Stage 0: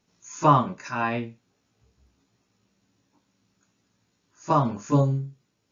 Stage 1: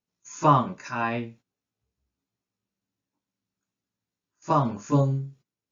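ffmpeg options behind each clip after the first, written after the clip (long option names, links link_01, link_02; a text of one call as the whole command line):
ffmpeg -i in.wav -af "agate=range=-17dB:threshold=-49dB:ratio=16:detection=peak,volume=-1dB" out.wav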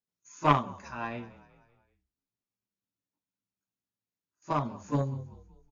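ffmpeg -i in.wav -filter_complex "[0:a]asplit=5[link_01][link_02][link_03][link_04][link_05];[link_02]adelay=191,afreqshift=-39,volume=-17.5dB[link_06];[link_03]adelay=382,afreqshift=-78,volume=-23.5dB[link_07];[link_04]adelay=573,afreqshift=-117,volume=-29.5dB[link_08];[link_05]adelay=764,afreqshift=-156,volume=-35.6dB[link_09];[link_01][link_06][link_07][link_08][link_09]amix=inputs=5:normalize=0,aeval=exprs='0.531*(cos(1*acos(clip(val(0)/0.531,-1,1)))-cos(1*PI/2))+0.119*(cos(3*acos(clip(val(0)/0.531,-1,1)))-cos(3*PI/2))':channel_layout=same" out.wav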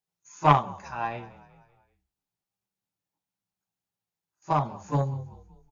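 ffmpeg -i in.wav -af "equalizer=frequency=160:width_type=o:width=0.33:gain=6,equalizer=frequency=250:width_type=o:width=0.33:gain=-10,equalizer=frequency=800:width_type=o:width=0.33:gain=9,volume=2dB" out.wav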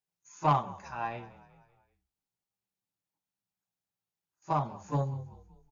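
ffmpeg -i in.wav -af "asoftclip=type=tanh:threshold=-11dB,volume=-4dB" out.wav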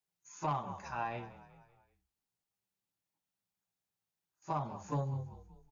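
ffmpeg -i in.wav -af "alimiter=level_in=1.5dB:limit=-24dB:level=0:latency=1:release=144,volume=-1.5dB" out.wav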